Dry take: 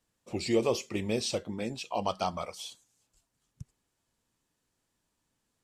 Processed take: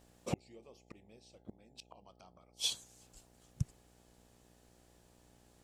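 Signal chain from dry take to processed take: inverted gate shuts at -29 dBFS, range -40 dB; mains buzz 60 Hz, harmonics 14, -77 dBFS -3 dB/octave; trim +10 dB

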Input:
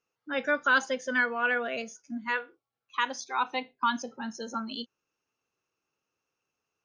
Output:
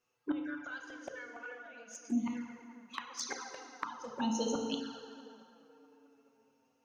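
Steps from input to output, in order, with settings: inverted gate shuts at -25 dBFS, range -26 dB; on a send: tape echo 216 ms, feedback 80%, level -17.5 dB, low-pass 2.5 kHz; on the sum: FDN reverb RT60 2.1 s, low-frequency decay 0.95×, high-frequency decay 0.85×, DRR 2 dB; touch-sensitive flanger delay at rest 8.2 ms, full sweep at -36 dBFS; trim +5 dB

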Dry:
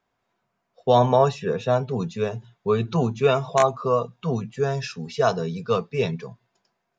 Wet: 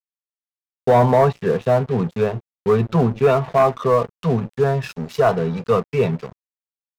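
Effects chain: waveshaping leveller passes 2; low-pass that closes with the level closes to 2 kHz, closed at -15.5 dBFS; crossover distortion -34 dBFS

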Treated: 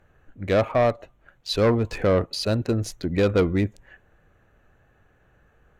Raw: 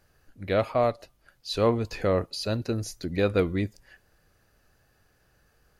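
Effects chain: local Wiener filter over 9 samples; sine folder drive 5 dB, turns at -10.5 dBFS; trim -3 dB

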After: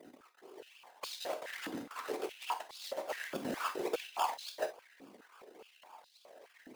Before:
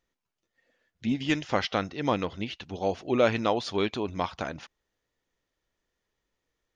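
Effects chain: companding laws mixed up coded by mu; differentiator; compression 6:1, threshold -48 dBFS, peak gain reduction 14.5 dB; decimation with a swept rate 31×, swing 60% 3.5 Hz; phaser 1.2 Hz, delay 4.1 ms, feedback 37%; whisper effect; 1.24–3.33 s: valve stage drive 48 dB, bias 0.65; gated-style reverb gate 80 ms flat, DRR 6.5 dB; step-sequenced high-pass 4.8 Hz 270–4000 Hz; trim +13 dB

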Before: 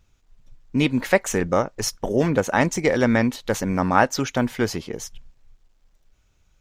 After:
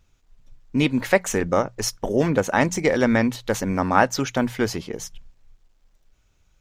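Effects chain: hum notches 60/120/180 Hz

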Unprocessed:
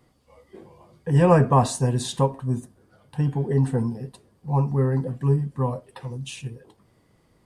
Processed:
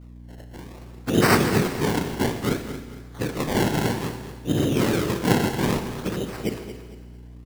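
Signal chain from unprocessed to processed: harmonic-percussive separation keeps harmonic; 2.48–3.45 s: high-pass 250 Hz 24 dB/octave; in parallel at -2 dB: compressor with a negative ratio -27 dBFS, ratio -0.5; on the sum: LFO low-pass saw up 1.7 Hz 960–5600 Hz; noise-vocoded speech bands 3; decimation with a swept rate 25×, swing 100% 0.6 Hz; hum 60 Hz, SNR 18 dB; on a send: feedback delay 227 ms, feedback 32%, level -12 dB; on the sum: Schroeder reverb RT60 1.4 s, combs from 26 ms, DRR 8.5 dB; trim -2.5 dB

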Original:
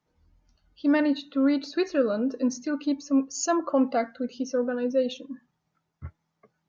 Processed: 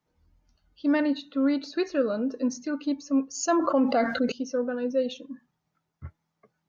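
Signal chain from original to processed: 3.48–4.32 s: level flattener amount 70%; trim -1.5 dB

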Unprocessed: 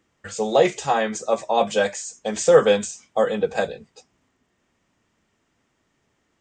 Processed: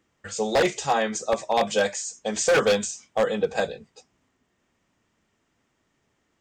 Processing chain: wavefolder -11.5 dBFS; dynamic bell 5.2 kHz, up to +4 dB, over -43 dBFS, Q 0.97; trim -2 dB

